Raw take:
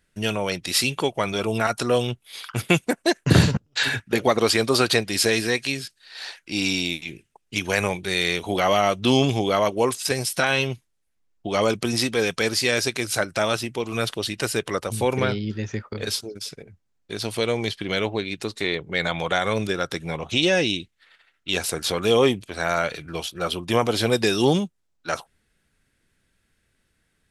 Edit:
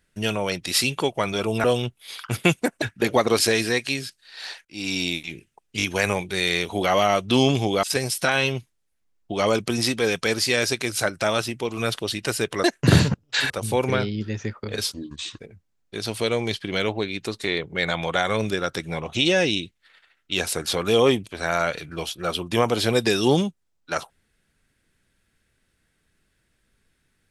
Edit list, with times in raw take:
1.64–1.89 cut
3.07–3.93 move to 14.79
4.5–5.17 cut
6.43–6.83 fade in linear, from -21 dB
7.56 stutter 0.02 s, 3 plays
9.57–9.98 cut
16.23–16.56 speed 73%

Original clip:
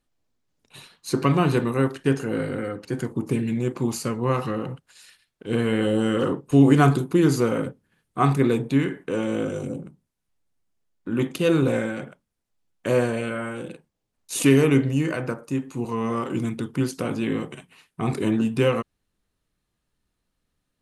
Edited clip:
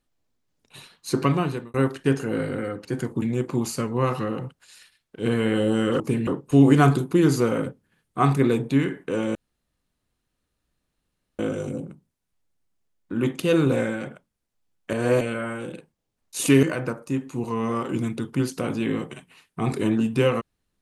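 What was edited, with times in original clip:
1.23–1.74 fade out
3.22–3.49 move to 6.27
9.35 insert room tone 2.04 s
12.89–13.17 reverse
14.59–15.04 cut

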